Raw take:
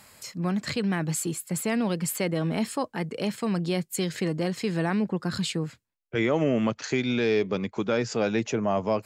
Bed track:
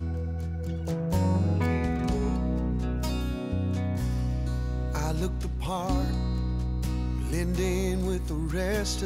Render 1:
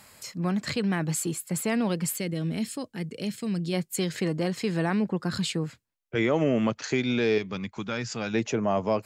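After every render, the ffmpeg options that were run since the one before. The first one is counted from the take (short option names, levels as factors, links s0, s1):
-filter_complex "[0:a]asplit=3[s0][s1][s2];[s0]afade=t=out:st=2.14:d=0.02[s3];[s1]equalizer=f=930:w=0.75:g=-14,afade=t=in:st=2.14:d=0.02,afade=t=out:st=3.72:d=0.02[s4];[s2]afade=t=in:st=3.72:d=0.02[s5];[s3][s4][s5]amix=inputs=3:normalize=0,asettb=1/sr,asplit=3[s6][s7][s8];[s6]atrim=end=7.384[s9];[s7]atrim=start=7.38:end=8.34,asetpts=PTS-STARTPTS,afade=t=in:d=0.004:c=qsin,afade=t=out:st=0.956:d=0.004:c=qsin,equalizer=f=460:t=o:w=1.6:g=-11[s10];[s8]atrim=start=8.336[s11];[s9][s10]acrossfade=d=0.004:c1=hsin:c2=qsin[s12];[s12][s11]acrossfade=d=0.004:c1=qsin:c2=hsin"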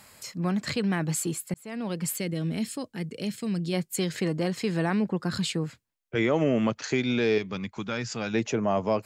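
-filter_complex "[0:a]asplit=2[s0][s1];[s0]atrim=end=1.54,asetpts=PTS-STARTPTS,afade=t=out:st=1.536:d=0.004:c=hsin[s2];[s1]atrim=start=1.54,asetpts=PTS-STARTPTS,afade=t=in:d=0.6[s3];[s2][s3]concat=n=2:v=0:a=1"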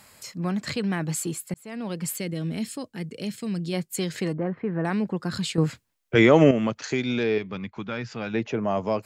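-filter_complex "[0:a]asettb=1/sr,asplit=3[s0][s1][s2];[s0]atrim=end=4.334[s3];[s1]atrim=start=4.33:end=4.85,asetpts=PTS-STARTPTS,afade=t=in:d=0.004:c=qsin,afade=t=out:st=0.516:d=0.004:c=qsin,lowpass=f=1700:w=0.5412,lowpass=f=1700:w=1.3066[s4];[s2]atrim=start=4.846[s5];[s3][s4]acrossfade=d=0.004:c1=hsin:c2=qsin[s6];[s6][s5]acrossfade=d=0.004:c1=qsin:c2=hsin,asettb=1/sr,asplit=3[s7][s8][s9];[s7]atrim=end=7.234[s10];[s8]atrim=start=7.23:end=8.65,asetpts=PTS-STARTPTS,afade=t=in:d=0.004:c=qsin,afade=t=out:st=1.416:d=0.004:c=qsin,lowpass=3400[s11];[s9]atrim=start=8.646[s12];[s10][s11]acrossfade=d=0.004:c1=hsin:c2=qsin[s13];[s13][s12]acrossfade=d=0.004:c1=qsin:c2=hsin,asplit=3[s14][s15][s16];[s14]atrim=end=5.582[s17];[s15]atrim=start=5.578:end=6.512,asetpts=PTS-STARTPTS,volume=2.66[s18];[s16]atrim=start=6.508[s19];[s17][s18]acrossfade=d=0.004:c1=hsin:c2=hsin[s20];[s20][s19]acrossfade=d=0.004:c1=hsin:c2=hsin"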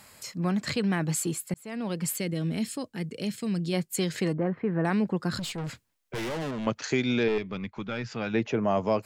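-filter_complex "[0:a]asettb=1/sr,asplit=3[s0][s1][s2];[s0]atrim=end=5.394[s3];[s1]atrim=start=5.39:end=6.67,asetpts=PTS-STARTPTS,afade=t=in:d=0.004:c=qsin,afade=t=out:st=1.276:d=0.004:c=qsin,aeval=exprs='(tanh(35.5*val(0)+0.2)-tanh(0.2))/35.5':c=same[s4];[s2]atrim=start=6.666[s5];[s3][s4]acrossfade=d=0.004:c1=hsin:c2=qsin[s6];[s6][s5]acrossfade=d=0.004:c1=qsin:c2=hsin,asettb=1/sr,asplit=3[s7][s8][s9];[s7]atrim=end=7.284[s10];[s8]atrim=start=7.28:end=8.06,asetpts=PTS-STARTPTS,afade=t=in:d=0.004:c=qsin,afade=t=out:st=0.776:d=0.004:c=qsin,aeval=exprs='(tanh(11.2*val(0)+0.35)-tanh(0.35))/11.2':c=same[s11];[s9]atrim=start=8.056[s12];[s10][s11]acrossfade=d=0.004:c1=hsin:c2=qsin[s13];[s13][s12]acrossfade=d=0.004:c1=qsin:c2=hsin"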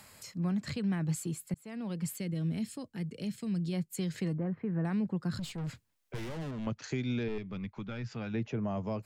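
-filter_complex "[0:a]acrossover=split=190[s0][s1];[s1]acompressor=threshold=0.00112:ratio=1.5[s2];[s0][s2]amix=inputs=2:normalize=0"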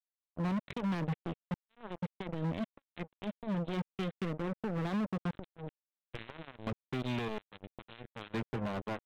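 -af "aresample=8000,acrusher=bits=4:mix=0:aa=0.5,aresample=44100,asoftclip=type=hard:threshold=0.0376"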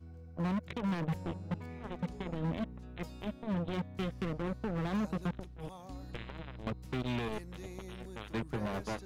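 -filter_complex "[1:a]volume=0.106[s0];[0:a][s0]amix=inputs=2:normalize=0"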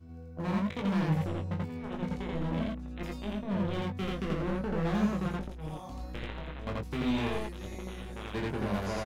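-filter_complex "[0:a]asplit=2[s0][s1];[s1]adelay=20,volume=0.562[s2];[s0][s2]amix=inputs=2:normalize=0,aecho=1:1:32.07|84.55:0.355|1"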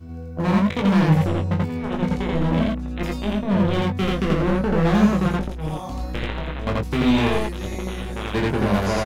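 -af "volume=3.98"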